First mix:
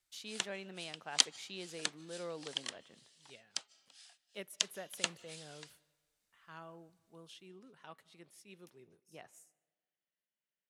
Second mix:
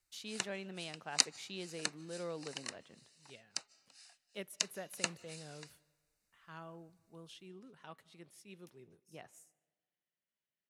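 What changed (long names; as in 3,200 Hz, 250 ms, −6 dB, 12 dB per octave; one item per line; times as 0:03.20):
background: add Butterworth band-reject 3,300 Hz, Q 4.1
master: add low-shelf EQ 210 Hz +6.5 dB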